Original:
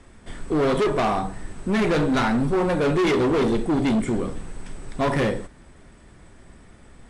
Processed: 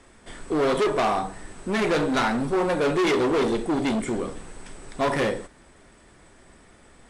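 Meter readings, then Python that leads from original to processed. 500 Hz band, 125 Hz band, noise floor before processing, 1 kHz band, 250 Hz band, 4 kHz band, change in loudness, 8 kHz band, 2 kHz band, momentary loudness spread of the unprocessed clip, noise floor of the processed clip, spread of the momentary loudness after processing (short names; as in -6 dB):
-1.0 dB, -7.0 dB, -49 dBFS, 0.0 dB, -3.5 dB, +0.5 dB, -1.5 dB, +2.0 dB, 0.0 dB, 14 LU, -54 dBFS, 15 LU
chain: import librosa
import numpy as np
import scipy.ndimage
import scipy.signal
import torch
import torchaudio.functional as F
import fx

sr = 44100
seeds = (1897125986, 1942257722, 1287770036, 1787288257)

y = fx.bass_treble(x, sr, bass_db=-8, treble_db=2)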